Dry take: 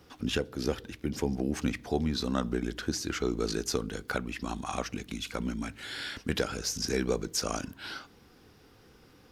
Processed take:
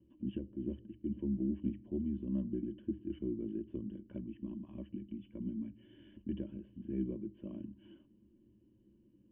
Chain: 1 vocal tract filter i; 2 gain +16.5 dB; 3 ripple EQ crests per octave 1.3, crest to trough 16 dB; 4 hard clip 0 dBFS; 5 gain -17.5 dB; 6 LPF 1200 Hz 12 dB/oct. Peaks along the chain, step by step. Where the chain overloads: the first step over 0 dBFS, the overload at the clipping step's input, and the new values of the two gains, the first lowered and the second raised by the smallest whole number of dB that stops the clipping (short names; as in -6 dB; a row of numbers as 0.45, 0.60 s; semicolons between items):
-23.5, -7.0, -5.5, -5.5, -23.0, -23.5 dBFS; no overload